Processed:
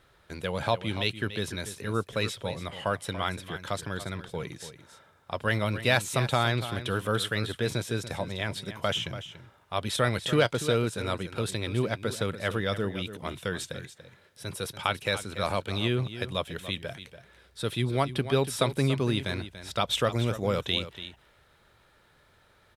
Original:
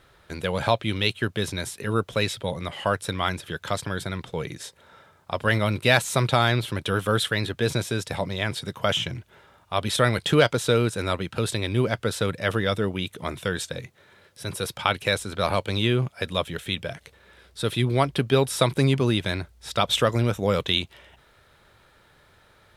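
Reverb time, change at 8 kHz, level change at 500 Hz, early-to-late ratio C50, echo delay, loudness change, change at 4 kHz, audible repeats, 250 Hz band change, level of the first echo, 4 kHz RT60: no reverb, -5.0 dB, -4.5 dB, no reverb, 287 ms, -5.0 dB, -5.0 dB, 1, -4.5 dB, -12.5 dB, no reverb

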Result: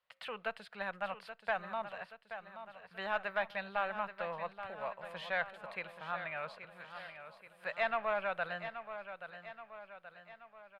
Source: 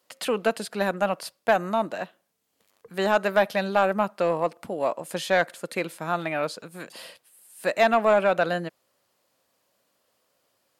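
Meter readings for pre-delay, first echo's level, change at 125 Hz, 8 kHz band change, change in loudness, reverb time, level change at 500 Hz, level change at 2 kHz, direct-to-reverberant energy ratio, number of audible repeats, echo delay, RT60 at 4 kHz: no reverb, -10.5 dB, -19.0 dB, under -25 dB, -14.5 dB, no reverb, -16.5 dB, -9.0 dB, no reverb, 5, 828 ms, no reverb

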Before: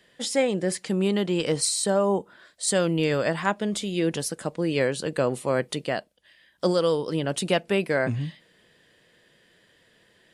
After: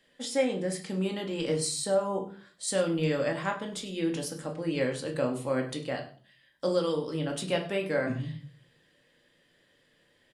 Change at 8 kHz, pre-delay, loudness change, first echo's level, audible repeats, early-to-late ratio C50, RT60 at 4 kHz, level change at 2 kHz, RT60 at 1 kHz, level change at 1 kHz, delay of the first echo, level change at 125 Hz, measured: -7.0 dB, 3 ms, -5.0 dB, -17.5 dB, 1, 10.5 dB, 0.35 s, -6.0 dB, 0.40 s, -6.0 dB, 100 ms, -5.0 dB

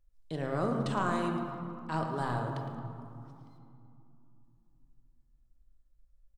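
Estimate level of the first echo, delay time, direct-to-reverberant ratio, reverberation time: -12.0 dB, 111 ms, 2.0 dB, 2.7 s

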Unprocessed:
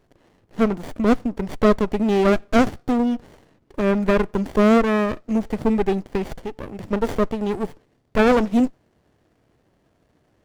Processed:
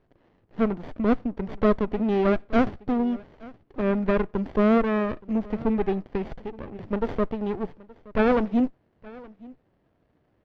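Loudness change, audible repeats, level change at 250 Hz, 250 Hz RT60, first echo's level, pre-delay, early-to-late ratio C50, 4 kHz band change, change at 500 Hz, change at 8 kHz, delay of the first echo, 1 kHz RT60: -4.5 dB, 1, -4.0 dB, no reverb, -22.0 dB, no reverb, no reverb, -9.5 dB, -4.5 dB, no reading, 872 ms, no reverb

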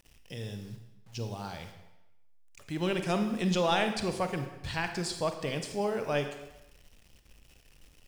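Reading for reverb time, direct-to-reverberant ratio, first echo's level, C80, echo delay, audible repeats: 0.95 s, 6.5 dB, no echo, 10.0 dB, no echo, no echo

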